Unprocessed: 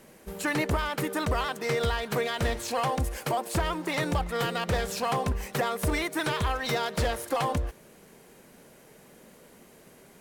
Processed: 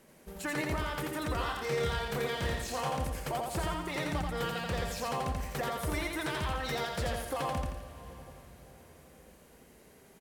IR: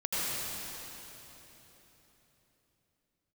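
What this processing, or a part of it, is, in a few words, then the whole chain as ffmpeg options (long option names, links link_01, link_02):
ducked reverb: -filter_complex "[0:a]asettb=1/sr,asplit=3[link_01][link_02][link_03];[link_01]atrim=end=1.334[link_04];[link_02]atrim=start=1.33:end=2.9,asetpts=PTS-STARTPTS,afade=type=in:duration=0.004:curve=qsin,afade=type=out:start_time=1.566:duration=0.004:curve=qsin,asplit=2[link_05][link_06];[link_06]adelay=28,volume=-5dB[link_07];[link_05][link_07]amix=inputs=2:normalize=0,atrim=end_sample=69237[link_08];[link_03]atrim=start=2.896[link_09];[link_04][link_08]acrossfade=duration=0.004:curve1=hsin:curve2=qsin[link_10];[link_10][link_09]acrossfade=duration=0.004:curve1=qsin:curve2=hsin,asplit=3[link_11][link_12][link_13];[1:a]atrim=start_sample=2205[link_14];[link_12][link_14]afir=irnorm=-1:irlink=0[link_15];[link_13]apad=whole_len=449948[link_16];[link_15][link_16]sidechaincompress=threshold=-30dB:ratio=8:attack=16:release=1010,volume=-18dB[link_17];[link_11][link_17]amix=inputs=2:normalize=0,aecho=1:1:85|170|255|340|425|510:0.708|0.311|0.137|0.0603|0.0265|0.0117,volume=-8dB"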